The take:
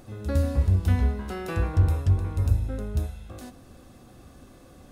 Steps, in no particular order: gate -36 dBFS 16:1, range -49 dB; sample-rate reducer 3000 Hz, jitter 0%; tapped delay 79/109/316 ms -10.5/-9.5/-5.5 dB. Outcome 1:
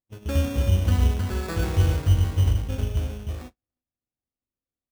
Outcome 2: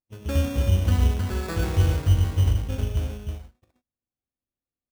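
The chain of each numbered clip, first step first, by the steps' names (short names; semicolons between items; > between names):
tapped delay > sample-rate reducer > gate; gate > tapped delay > sample-rate reducer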